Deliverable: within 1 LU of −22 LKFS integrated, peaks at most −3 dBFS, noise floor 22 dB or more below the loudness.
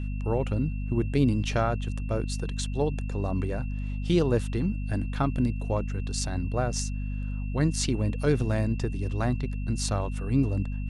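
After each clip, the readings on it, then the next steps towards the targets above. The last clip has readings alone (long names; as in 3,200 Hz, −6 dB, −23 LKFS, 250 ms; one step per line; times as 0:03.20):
mains hum 50 Hz; hum harmonics up to 250 Hz; level of the hum −28 dBFS; interfering tone 2,700 Hz; level of the tone −49 dBFS; integrated loudness −28.5 LKFS; sample peak −11.0 dBFS; target loudness −22.0 LKFS
→ mains-hum notches 50/100/150/200/250 Hz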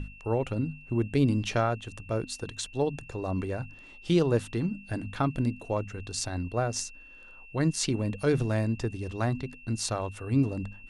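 mains hum none found; interfering tone 2,700 Hz; level of the tone −49 dBFS
→ notch filter 2,700 Hz, Q 30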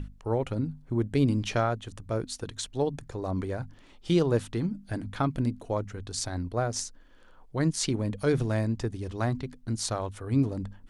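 interfering tone none found; integrated loudness −30.0 LKFS; sample peak −11.5 dBFS; target loudness −22.0 LKFS
→ level +8 dB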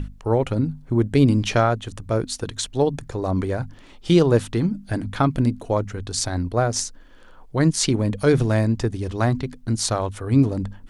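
integrated loudness −22.0 LKFS; sample peak −3.5 dBFS; background noise floor −46 dBFS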